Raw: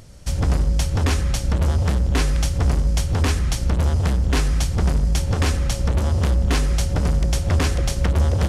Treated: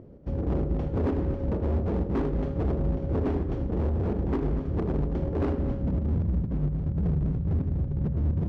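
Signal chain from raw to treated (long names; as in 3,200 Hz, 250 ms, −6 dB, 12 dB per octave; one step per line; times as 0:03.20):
bass and treble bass +2 dB, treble −7 dB
low-pass filter sweep 370 Hz → 160 Hz, 0:05.45–0:06.25
spectral tilt +4 dB per octave
in parallel at −1 dB: brickwall limiter −23 dBFS, peak gain reduction 7.5 dB
on the sum: square-wave tremolo 4.3 Hz, depth 60%, duty 75%
four-comb reverb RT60 0.58 s, combs from 27 ms, DRR 6.5 dB
gain into a clipping stage and back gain 23 dB
low-pass filter 7,200 Hz 12 dB per octave
on a send: echo machine with several playback heads 80 ms, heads first and third, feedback 45%, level −14 dB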